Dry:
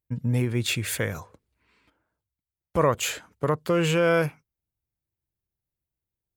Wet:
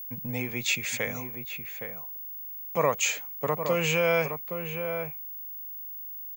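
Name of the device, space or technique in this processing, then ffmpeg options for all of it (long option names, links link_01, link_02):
old television with a line whistle: -filter_complex "[0:a]highpass=frequency=160:width=0.5412,highpass=frequency=160:width=1.3066,equalizer=frequency=220:width_type=q:width=4:gain=-5,equalizer=frequency=340:width_type=q:width=4:gain=-9,equalizer=frequency=770:width_type=q:width=4:gain=5,equalizer=frequency=1500:width_type=q:width=4:gain=-6,equalizer=frequency=2300:width_type=q:width=4:gain=9,equalizer=frequency=6600:width_type=q:width=4:gain=10,lowpass=frequency=7200:width=0.5412,lowpass=frequency=7200:width=1.3066,asplit=2[link_01][link_02];[link_02]adelay=816.3,volume=-7dB,highshelf=frequency=4000:gain=-18.4[link_03];[link_01][link_03]amix=inputs=2:normalize=0,aeval=exprs='val(0)+0.02*sin(2*PI*15625*n/s)':channel_layout=same,volume=-2.5dB"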